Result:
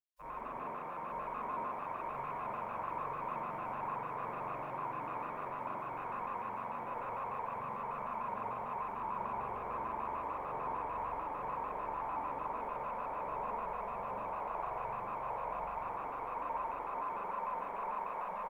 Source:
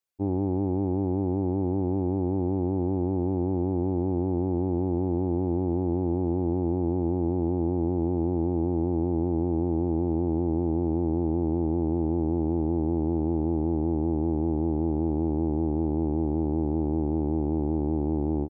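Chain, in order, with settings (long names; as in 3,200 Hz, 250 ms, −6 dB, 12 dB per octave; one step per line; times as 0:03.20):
gate on every frequency bin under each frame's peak −30 dB weak
brickwall limiter −52.5 dBFS, peak gain reduction 6.5 dB
on a send: repeating echo 924 ms, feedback 51%, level −4 dB
on the sum: spring reverb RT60 1.8 s, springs 43 ms, chirp 45 ms, DRR −8.5 dB
pitch modulation by a square or saw wave square 6.7 Hz, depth 100 cents
level +11.5 dB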